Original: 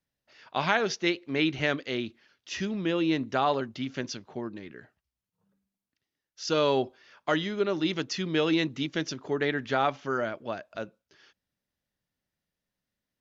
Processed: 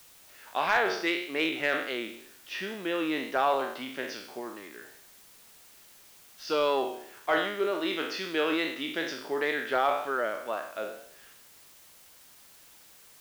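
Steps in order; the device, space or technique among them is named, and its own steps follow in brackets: spectral sustain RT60 0.66 s; tape answering machine (band-pass 390–3300 Hz; saturation -13.5 dBFS, distortion -22 dB; wow and flutter; white noise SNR 23 dB); 7.71–8.89 s: high-pass 150 Hz

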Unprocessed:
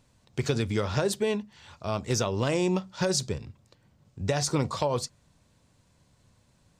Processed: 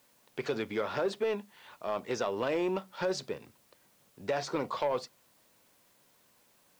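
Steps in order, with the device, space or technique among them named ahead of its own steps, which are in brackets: tape answering machine (band-pass 340–2900 Hz; saturation -22 dBFS, distortion -16 dB; wow and flutter; white noise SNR 32 dB)

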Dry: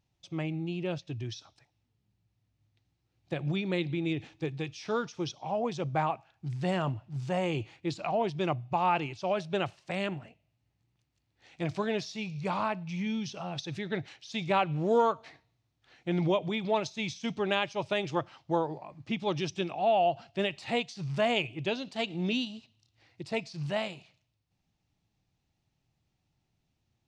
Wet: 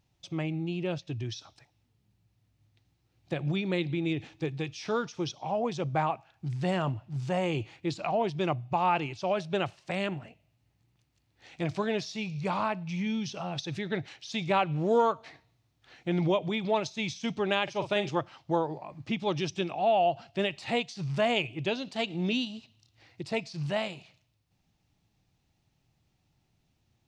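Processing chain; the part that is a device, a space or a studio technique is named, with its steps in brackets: parallel compression (in parallel at -2 dB: compression, threshold -44 dBFS, peak gain reduction 22 dB); 17.63–18.09 s: on the sum: doubling 44 ms -9 dB

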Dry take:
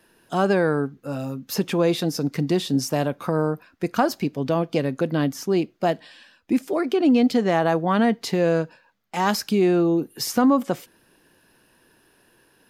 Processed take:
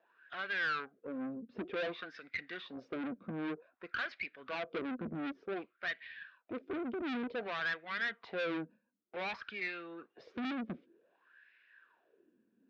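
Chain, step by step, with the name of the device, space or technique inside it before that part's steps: wah-wah guitar rig (wah-wah 0.54 Hz 220–2100 Hz, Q 6.9; valve stage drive 40 dB, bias 0.6; cabinet simulation 97–4400 Hz, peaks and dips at 140 Hz -8 dB, 280 Hz -3 dB, 860 Hz -9 dB, 1.5 kHz +5 dB, 2.4 kHz +6 dB, 3.6 kHz +6 dB); trim +6 dB

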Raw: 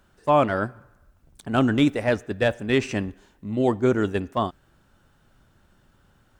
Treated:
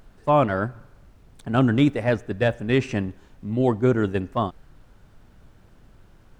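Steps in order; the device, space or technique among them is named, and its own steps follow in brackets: car interior (peaking EQ 130 Hz +5 dB 0.85 oct; treble shelf 4.2 kHz -6.5 dB; brown noise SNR 25 dB)

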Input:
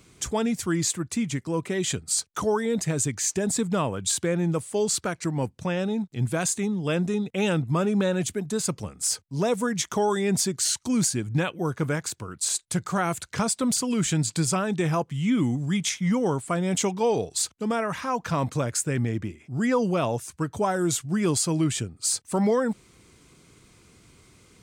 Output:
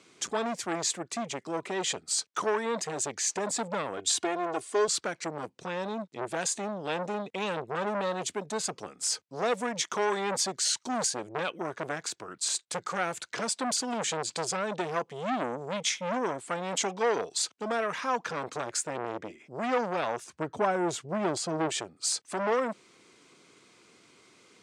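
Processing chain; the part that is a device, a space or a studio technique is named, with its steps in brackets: public-address speaker with an overloaded transformer (transformer saturation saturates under 1.2 kHz; band-pass 310–5800 Hz); treble shelf 9.4 kHz +5.5 dB; 3.97–4.88 s: comb 2.8 ms, depth 73%; 20.24–21.69 s: tilt EQ -2 dB/octave

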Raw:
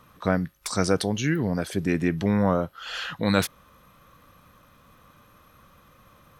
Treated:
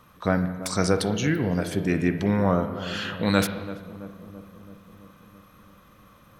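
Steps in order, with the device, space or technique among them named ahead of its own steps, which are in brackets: dub delay into a spring reverb (filtered feedback delay 333 ms, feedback 69%, low-pass 930 Hz, level -13 dB; spring tank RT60 1.1 s, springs 33/50 ms, chirp 25 ms, DRR 8 dB)

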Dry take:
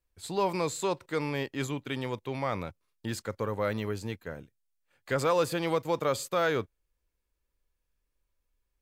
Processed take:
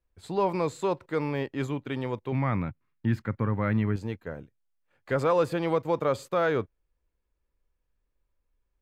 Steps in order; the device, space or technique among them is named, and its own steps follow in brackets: 2.32–3.96 s: graphic EQ 125/250/500/2000/4000/8000 Hz +8/+6/-8/+6/-4/-11 dB; through cloth (treble shelf 3.2 kHz -15 dB); trim +3 dB

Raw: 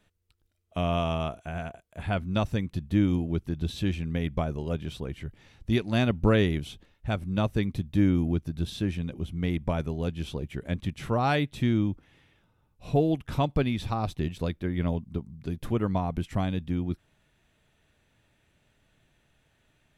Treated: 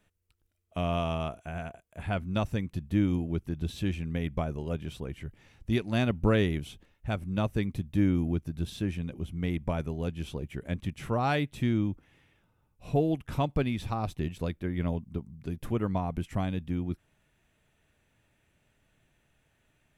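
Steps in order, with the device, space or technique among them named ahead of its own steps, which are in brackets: exciter from parts (in parallel at -8 dB: high-pass 2.8 kHz 12 dB/octave + saturation -38 dBFS, distortion -8 dB + high-pass 2.7 kHz 24 dB/octave); on the sum: trim -2.5 dB

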